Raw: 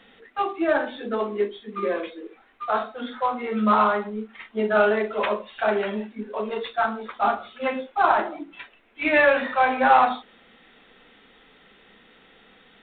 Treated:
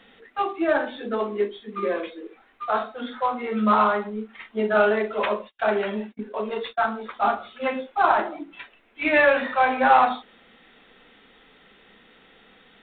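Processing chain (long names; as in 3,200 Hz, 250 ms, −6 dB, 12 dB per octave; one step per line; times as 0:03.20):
0:04.74–0:06.90: noise gate −36 dBFS, range −42 dB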